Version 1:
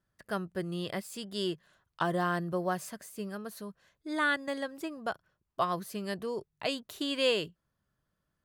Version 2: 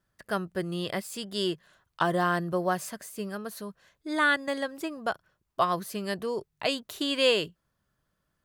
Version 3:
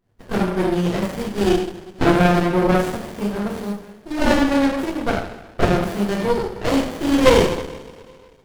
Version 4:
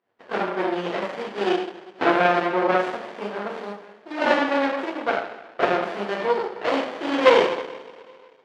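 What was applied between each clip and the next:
bell 130 Hz -2.5 dB 3 oct; gain +5 dB
two-slope reverb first 0.74 s, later 2.3 s, from -18 dB, DRR -9 dB; running maximum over 33 samples; gain +3.5 dB
BPF 480–3100 Hz; gain +1 dB

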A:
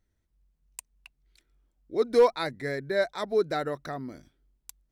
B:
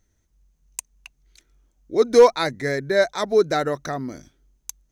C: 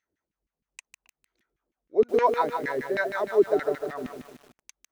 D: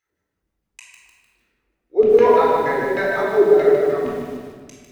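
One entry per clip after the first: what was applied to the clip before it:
bell 6300 Hz +13 dB 0.24 oct; gain +7.5 dB
LFO band-pass saw down 6.4 Hz 240–2600 Hz; lo-fi delay 0.151 s, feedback 55%, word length 8-bit, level -6 dB
shoebox room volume 1500 m³, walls mixed, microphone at 4 m

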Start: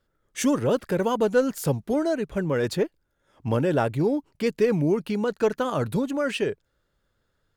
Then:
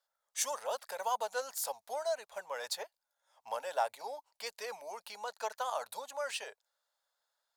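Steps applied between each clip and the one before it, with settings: inverse Chebyshev high-pass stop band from 360 Hz, stop band 40 dB; band shelf 1900 Hz -8.5 dB; gain -1.5 dB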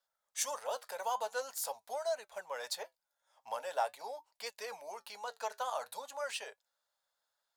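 flange 0.45 Hz, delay 4 ms, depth 4.5 ms, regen -72%; gain +3 dB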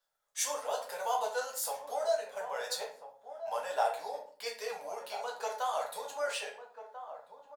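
outdoor echo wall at 230 m, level -10 dB; shoebox room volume 44 m³, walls mixed, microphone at 0.7 m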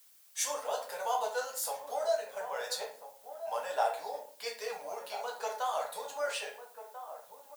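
added noise blue -61 dBFS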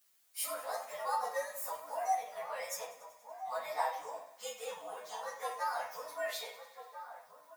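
inharmonic rescaling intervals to 114%; thinning echo 95 ms, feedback 72%, high-pass 500 Hz, level -17.5 dB

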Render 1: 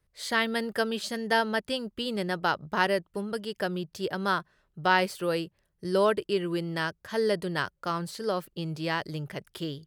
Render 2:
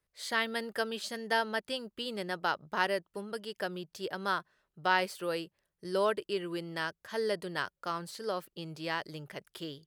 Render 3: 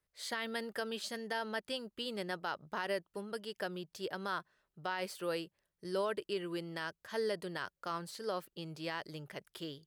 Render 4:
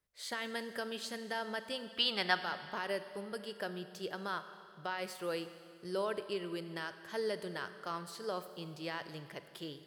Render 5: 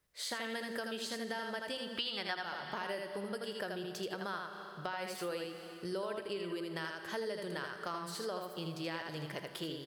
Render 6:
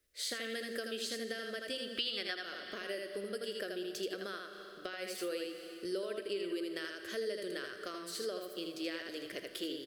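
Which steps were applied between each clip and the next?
low shelf 200 Hz -11 dB; gain -4 dB
limiter -23.5 dBFS, peak gain reduction 10.5 dB; gain -2.5 dB
spectral gain 1.9–2.38, 660–5900 Hz +12 dB; Schroeder reverb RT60 2.3 s, combs from 30 ms, DRR 10.5 dB; gain -1 dB
echo 80 ms -4.5 dB; compressor 4:1, threshold -44 dBFS, peak gain reduction 16.5 dB; gain +6.5 dB
fixed phaser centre 370 Hz, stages 4; gain +2.5 dB

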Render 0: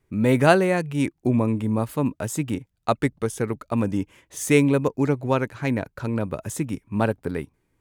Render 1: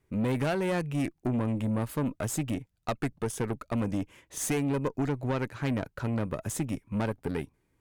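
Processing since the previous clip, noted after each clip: compressor, threshold -20 dBFS, peak gain reduction 10 dB; tube stage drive 23 dB, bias 0.5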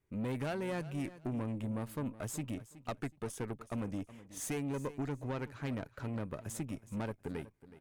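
feedback echo 0.371 s, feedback 24%, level -16.5 dB; gain -8.5 dB

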